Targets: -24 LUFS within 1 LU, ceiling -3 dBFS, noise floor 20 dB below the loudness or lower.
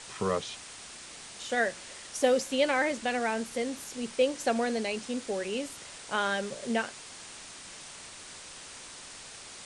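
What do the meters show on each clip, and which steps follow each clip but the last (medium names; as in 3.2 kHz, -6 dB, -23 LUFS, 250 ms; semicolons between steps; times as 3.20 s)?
noise floor -47 dBFS; noise floor target -51 dBFS; loudness -30.5 LUFS; peak level -12.5 dBFS; loudness target -24.0 LUFS
-> noise reduction 6 dB, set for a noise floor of -47 dBFS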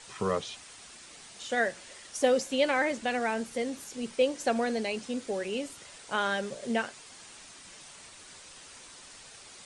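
noise floor -50 dBFS; noise floor target -51 dBFS
-> noise reduction 6 dB, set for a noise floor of -50 dBFS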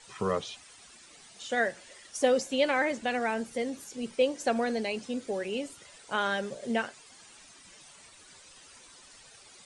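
noise floor -54 dBFS; loudness -30.5 LUFS; peak level -12.5 dBFS; loudness target -24.0 LUFS
-> trim +6.5 dB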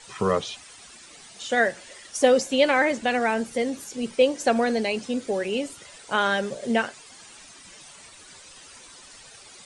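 loudness -24.0 LUFS; peak level -6.0 dBFS; noise floor -48 dBFS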